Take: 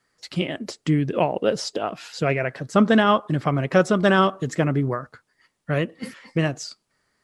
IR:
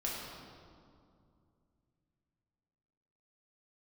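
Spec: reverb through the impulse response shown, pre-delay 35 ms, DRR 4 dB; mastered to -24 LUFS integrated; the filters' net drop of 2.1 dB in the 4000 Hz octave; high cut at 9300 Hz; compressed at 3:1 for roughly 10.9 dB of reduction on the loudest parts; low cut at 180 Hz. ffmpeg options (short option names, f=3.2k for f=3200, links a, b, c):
-filter_complex "[0:a]highpass=180,lowpass=9.3k,equalizer=f=4k:t=o:g=-3,acompressor=threshold=-28dB:ratio=3,asplit=2[a][b];[1:a]atrim=start_sample=2205,adelay=35[c];[b][c]afir=irnorm=-1:irlink=0,volume=-7.5dB[d];[a][d]amix=inputs=2:normalize=0,volume=6.5dB"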